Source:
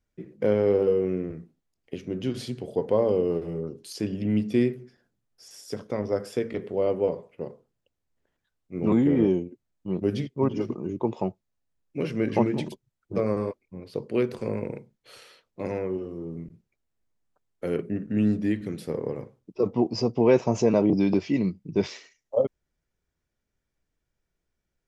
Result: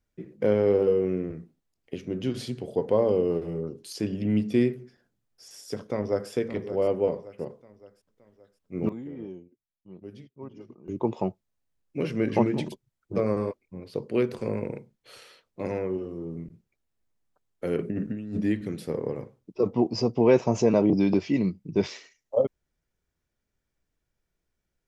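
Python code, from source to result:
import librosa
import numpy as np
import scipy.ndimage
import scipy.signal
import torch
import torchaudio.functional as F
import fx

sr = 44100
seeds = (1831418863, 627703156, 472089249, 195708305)

y = fx.echo_throw(x, sr, start_s=5.79, length_s=0.51, ms=570, feedback_pct=50, wet_db=-12.5)
y = fx.over_compress(y, sr, threshold_db=-31.0, ratio=-1.0, at=(17.78, 18.41))
y = fx.edit(y, sr, fx.fade_down_up(start_s=8.76, length_s=2.25, db=-17.5, fade_s=0.13, curve='log'), tone=tone)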